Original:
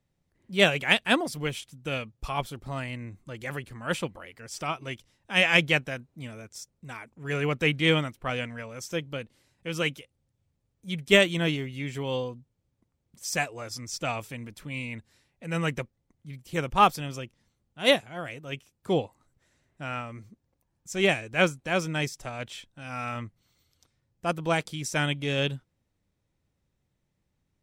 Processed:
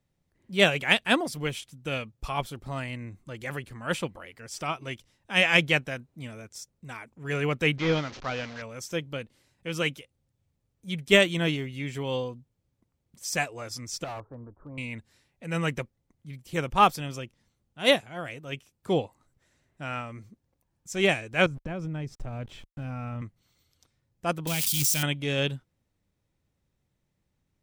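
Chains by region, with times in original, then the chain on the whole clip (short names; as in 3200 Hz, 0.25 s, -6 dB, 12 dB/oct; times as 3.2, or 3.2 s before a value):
7.78–8.62 delta modulation 32 kbps, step -36 dBFS + low shelf 240 Hz -5 dB
14.04–14.78 steep low-pass 1300 Hz 48 dB/oct + bell 180 Hz -11.5 dB 0.75 oct + hard clip -34 dBFS
21.46–23.22 sample gate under -48.5 dBFS + tilt -4 dB/oct + compressor 8:1, threshold -30 dBFS
24.47–25.03 switching spikes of -19.5 dBFS + band shelf 770 Hz -11.5 dB 2.9 oct + backwards sustainer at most 33 dB/s
whole clip: dry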